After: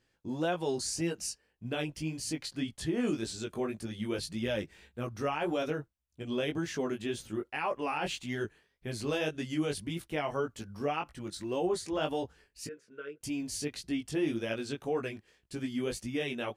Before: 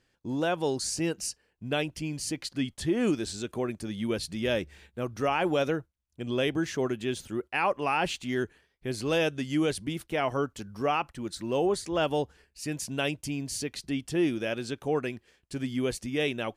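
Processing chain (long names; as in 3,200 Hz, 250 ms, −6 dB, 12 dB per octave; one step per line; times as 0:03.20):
brickwall limiter −20.5 dBFS, peak gain reduction 5 dB
0:12.67–0:13.21: pair of resonant band-passes 800 Hz, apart 1.7 octaves
chorus effect 1.8 Hz, delay 17 ms, depth 3.9 ms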